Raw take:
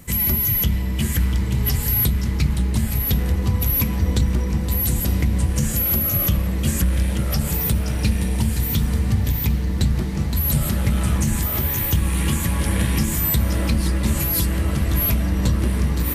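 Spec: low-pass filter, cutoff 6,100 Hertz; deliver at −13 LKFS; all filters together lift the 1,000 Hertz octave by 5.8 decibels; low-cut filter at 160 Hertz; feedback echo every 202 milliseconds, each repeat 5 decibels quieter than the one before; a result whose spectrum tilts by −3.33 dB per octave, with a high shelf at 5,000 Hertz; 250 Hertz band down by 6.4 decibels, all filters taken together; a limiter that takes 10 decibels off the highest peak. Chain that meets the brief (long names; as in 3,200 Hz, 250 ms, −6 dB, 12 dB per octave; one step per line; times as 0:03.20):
high-pass filter 160 Hz
low-pass filter 6,100 Hz
parametric band 250 Hz −7.5 dB
parametric band 1,000 Hz +7 dB
high-shelf EQ 5,000 Hz +8.5 dB
brickwall limiter −19 dBFS
repeating echo 202 ms, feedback 56%, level −5 dB
level +14 dB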